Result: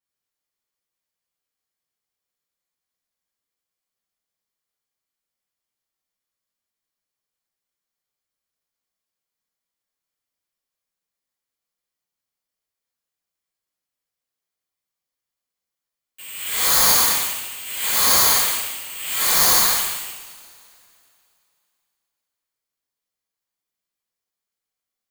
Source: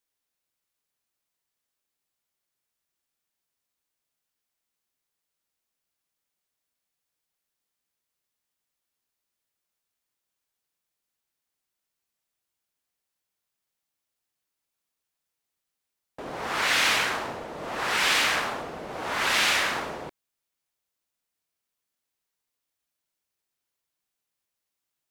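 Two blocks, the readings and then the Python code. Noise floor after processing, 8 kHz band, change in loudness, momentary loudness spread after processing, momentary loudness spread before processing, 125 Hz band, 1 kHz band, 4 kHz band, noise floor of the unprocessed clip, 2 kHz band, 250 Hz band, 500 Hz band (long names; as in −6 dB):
below −85 dBFS, +15.0 dB, +8.0 dB, 15 LU, 16 LU, +4.0 dB, +2.5 dB, +5.0 dB, −85 dBFS, −2.0 dB, 0.0 dB, 0.0 dB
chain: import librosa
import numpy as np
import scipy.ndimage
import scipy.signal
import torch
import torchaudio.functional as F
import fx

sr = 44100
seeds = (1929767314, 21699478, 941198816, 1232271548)

p1 = fx.dynamic_eq(x, sr, hz=2400.0, q=5.2, threshold_db=-42.0, ratio=4.0, max_db=6)
p2 = fx.freq_invert(p1, sr, carrier_hz=3400)
p3 = p2 + fx.echo_single(p2, sr, ms=216, db=-11.5, dry=0)
p4 = (np.kron(scipy.signal.resample_poly(p3, 1, 8), np.eye(8)[0]) * 8)[:len(p3)]
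p5 = fx.rev_double_slope(p4, sr, seeds[0], early_s=0.59, late_s=2.7, knee_db=-20, drr_db=-9.5)
y = p5 * librosa.db_to_amplitude(-12.0)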